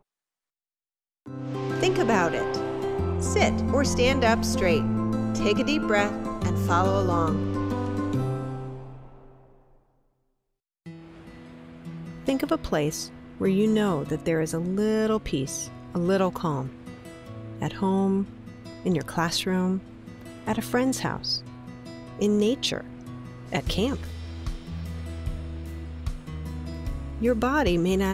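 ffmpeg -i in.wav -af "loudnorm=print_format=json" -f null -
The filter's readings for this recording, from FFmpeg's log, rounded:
"input_i" : "-26.4",
"input_tp" : "-8.6",
"input_lra" : "9.0",
"input_thresh" : "-37.2",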